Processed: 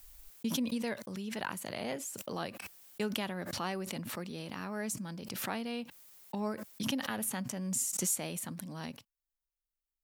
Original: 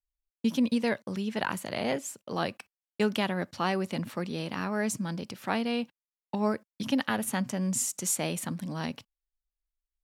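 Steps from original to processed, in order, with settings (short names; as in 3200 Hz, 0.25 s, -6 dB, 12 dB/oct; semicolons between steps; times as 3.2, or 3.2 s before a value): high shelf 8800 Hz +11 dB; backwards sustainer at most 32 dB/s; gain -8.5 dB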